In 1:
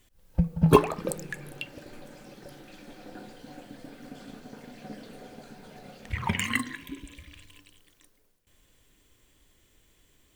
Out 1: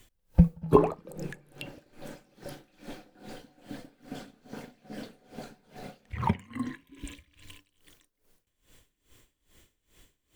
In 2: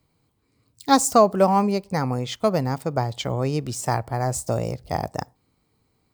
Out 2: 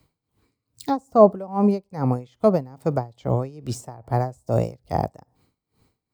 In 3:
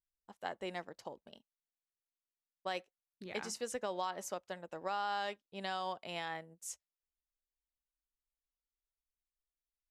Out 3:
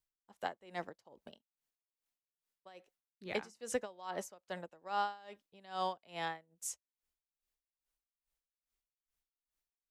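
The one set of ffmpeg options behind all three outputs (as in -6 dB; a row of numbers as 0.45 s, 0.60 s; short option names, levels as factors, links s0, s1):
-filter_complex "[0:a]acrossover=split=470|1000[s0][s1][s2];[s2]acompressor=threshold=0.00794:ratio=6[s3];[s0][s1][s3]amix=inputs=3:normalize=0,aeval=exprs='val(0)*pow(10,-24*(0.5-0.5*cos(2*PI*2.4*n/s))/20)':c=same,volume=2"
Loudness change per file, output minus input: -1.0 LU, -0.5 LU, 0.0 LU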